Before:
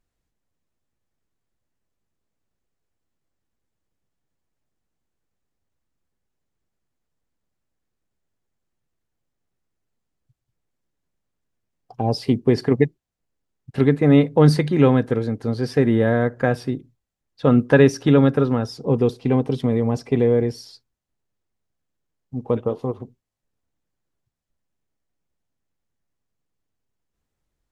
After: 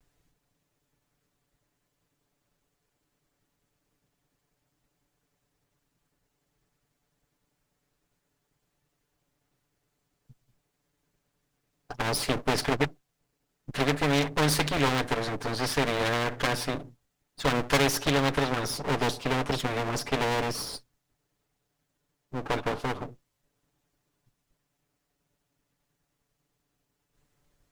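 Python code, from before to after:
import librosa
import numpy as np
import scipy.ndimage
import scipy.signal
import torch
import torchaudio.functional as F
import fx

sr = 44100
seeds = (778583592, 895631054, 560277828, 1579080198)

y = fx.lower_of_two(x, sr, delay_ms=6.9)
y = fx.spectral_comp(y, sr, ratio=2.0)
y = F.gain(torch.from_numpy(y), -4.5).numpy()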